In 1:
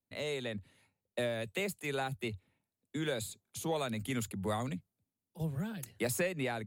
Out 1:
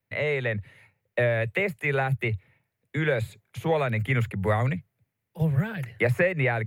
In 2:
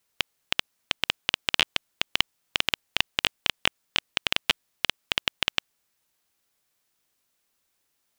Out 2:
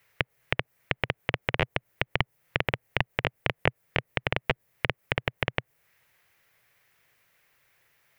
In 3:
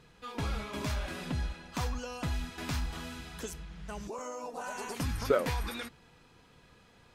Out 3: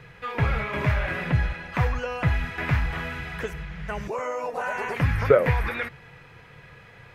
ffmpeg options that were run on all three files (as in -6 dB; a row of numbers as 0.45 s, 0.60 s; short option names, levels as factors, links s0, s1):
-filter_complex "[0:a]acrossover=split=760|6600[s0][s1][s2];[s1]acompressor=threshold=0.0126:ratio=5[s3];[s0][s3][s2]amix=inputs=3:normalize=0,equalizer=f=125:t=o:w=1:g=11,equalizer=f=250:t=o:w=1:g=-8,equalizer=f=500:t=o:w=1:g=5,equalizer=f=2000:t=o:w=1:g=12,equalizer=f=4000:t=o:w=1:g=-4,equalizer=f=8000:t=o:w=1:g=-7,acrossover=split=3100[s4][s5];[s5]acompressor=threshold=0.00158:ratio=4:attack=1:release=60[s6];[s4][s6]amix=inputs=2:normalize=0,volume=2.24"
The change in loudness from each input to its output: +10.5 LU, -3.5 LU, +10.0 LU